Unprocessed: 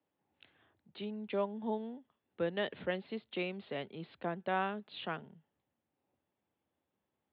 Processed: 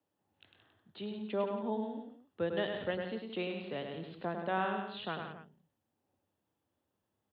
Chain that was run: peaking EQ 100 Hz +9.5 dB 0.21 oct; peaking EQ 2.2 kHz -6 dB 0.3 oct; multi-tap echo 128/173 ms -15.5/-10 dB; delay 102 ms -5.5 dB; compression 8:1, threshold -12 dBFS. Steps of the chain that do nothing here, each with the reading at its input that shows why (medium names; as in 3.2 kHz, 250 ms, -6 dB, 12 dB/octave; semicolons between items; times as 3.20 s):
compression, threshold -12 dBFS: peak at its input -20.5 dBFS